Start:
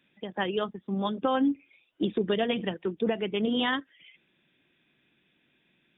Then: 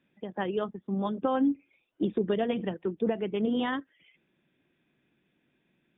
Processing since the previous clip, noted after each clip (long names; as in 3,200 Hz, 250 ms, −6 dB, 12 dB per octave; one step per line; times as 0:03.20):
low-pass filter 1,100 Hz 6 dB per octave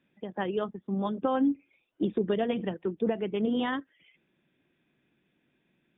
no processing that can be heard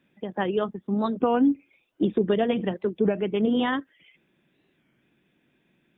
wow of a warped record 33 1/3 rpm, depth 160 cents
level +5 dB